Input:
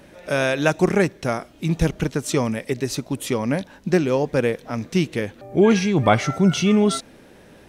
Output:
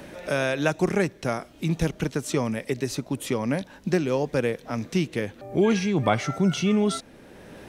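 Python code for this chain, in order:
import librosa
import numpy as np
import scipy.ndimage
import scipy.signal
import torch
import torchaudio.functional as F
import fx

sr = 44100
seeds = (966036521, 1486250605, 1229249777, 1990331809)

y = fx.band_squash(x, sr, depth_pct=40)
y = F.gain(torch.from_numpy(y), -4.5).numpy()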